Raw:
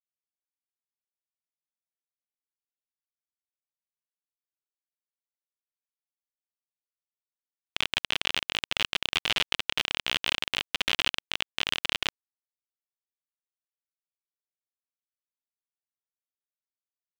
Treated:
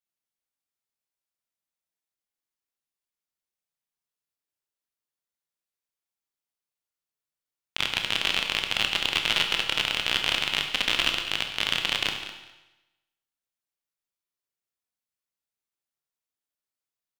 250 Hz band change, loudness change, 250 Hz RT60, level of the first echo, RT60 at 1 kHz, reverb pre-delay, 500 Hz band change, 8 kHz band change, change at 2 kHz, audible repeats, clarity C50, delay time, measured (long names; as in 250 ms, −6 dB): +4.0 dB, +3.5 dB, 0.95 s, −13.0 dB, 1.0 s, 19 ms, +3.5 dB, +3.5 dB, +3.5 dB, 2, 6.0 dB, 205 ms